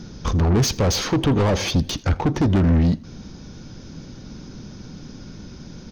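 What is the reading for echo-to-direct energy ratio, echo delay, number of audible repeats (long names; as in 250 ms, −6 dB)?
−22.5 dB, 82 ms, 2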